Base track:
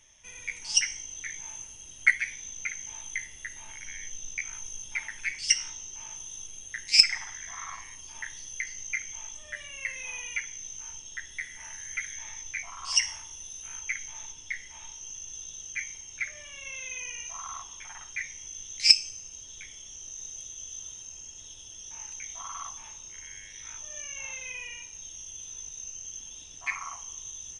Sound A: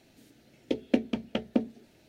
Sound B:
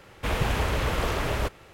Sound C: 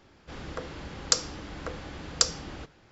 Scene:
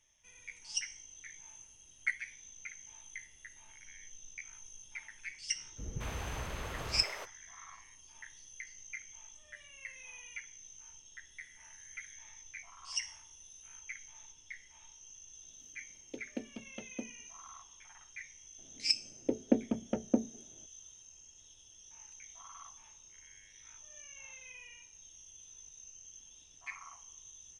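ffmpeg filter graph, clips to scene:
-filter_complex "[1:a]asplit=2[s0][s1];[0:a]volume=0.237[s2];[2:a]acrossover=split=410[s3][s4];[s4]adelay=220[s5];[s3][s5]amix=inputs=2:normalize=0[s6];[s1]lowpass=1200[s7];[s6]atrim=end=1.73,asetpts=PTS-STARTPTS,volume=0.211,afade=t=in:d=0.004:c=hsin,afade=t=out:st=1.726:d=0.004:c=hsin,adelay=5550[s8];[s0]atrim=end=2.08,asetpts=PTS-STARTPTS,volume=0.158,afade=t=in:d=0.004:c=hsin,afade=t=out:st=2.076:d=0.004:c=hsin,adelay=15430[s9];[s7]atrim=end=2.08,asetpts=PTS-STARTPTS,volume=0.75,afade=t=in:d=0.004:c=hsin,afade=t=out:st=2.076:d=0.004:c=hsin,adelay=18580[s10];[s2][s8][s9][s10]amix=inputs=4:normalize=0"

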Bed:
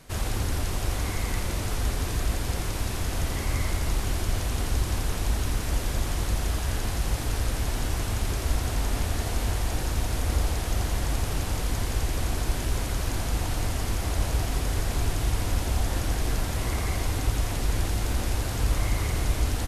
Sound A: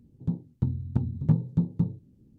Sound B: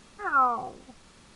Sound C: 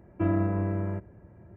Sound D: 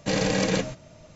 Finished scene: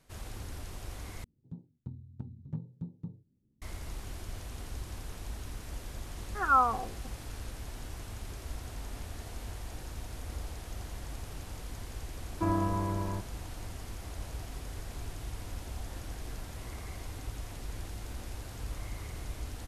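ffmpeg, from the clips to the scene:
-filter_complex "[0:a]volume=0.188[s0];[3:a]equalizer=f=1000:t=o:w=0.37:g=14[s1];[s0]asplit=2[s2][s3];[s2]atrim=end=1.244[s4];[1:a]atrim=end=2.38,asetpts=PTS-STARTPTS,volume=0.158[s5];[s3]atrim=start=3.616[s6];[2:a]atrim=end=1.35,asetpts=PTS-STARTPTS,volume=0.841,afade=t=in:d=0.004:c=hsin,afade=t=out:st=1.346:d=0.004:c=hsin,adelay=6160[s7];[s1]atrim=end=1.56,asetpts=PTS-STARTPTS,volume=0.562,afade=t=in:d=0.004:c=hsin,afade=t=out:st=1.556:d=0.004:c=hsin,adelay=12210[s8];[s4][s5]acrossfade=d=0.004:c1=hsin:c2=hsin[s9];[s9][s6]acrossfade=d=0.004:c1=hsin:c2=hsin[s10];[s10][s7][s8]amix=inputs=3:normalize=0"

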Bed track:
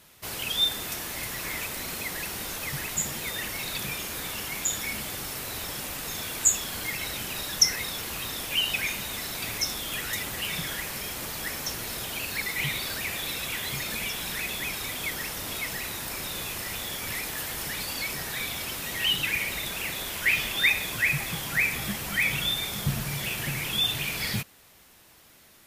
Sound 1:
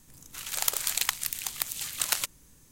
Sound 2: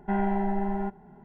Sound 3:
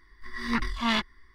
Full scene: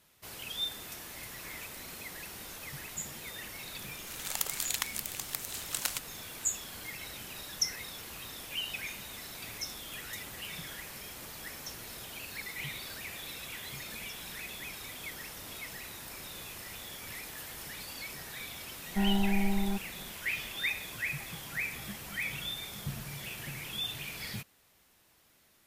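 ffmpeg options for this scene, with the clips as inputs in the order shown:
-filter_complex "[0:a]volume=0.299[s0];[2:a]bass=f=250:g=11,treble=f=4000:g=9[s1];[1:a]atrim=end=2.71,asetpts=PTS-STARTPTS,volume=0.501,afade=t=in:d=0.004:c=hsin,afade=t=out:st=2.706:d=0.004:c=hsin,adelay=164493S[s2];[s1]atrim=end=1.24,asetpts=PTS-STARTPTS,volume=0.376,afade=t=in:d=0.004:c=hsin,afade=t=out:st=1.236:d=0.004:c=hsin,adelay=18880[s3];[s0][s2][s3]amix=inputs=3:normalize=0"

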